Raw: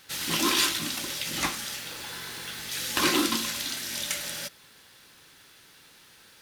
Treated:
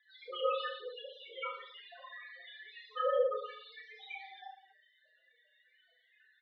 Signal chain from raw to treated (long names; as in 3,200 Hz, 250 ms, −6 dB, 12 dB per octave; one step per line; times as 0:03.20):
spectral peaks only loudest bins 4
reverse bouncing-ball delay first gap 30 ms, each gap 1.25×, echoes 5
single-sideband voice off tune +200 Hz 320–2,900 Hz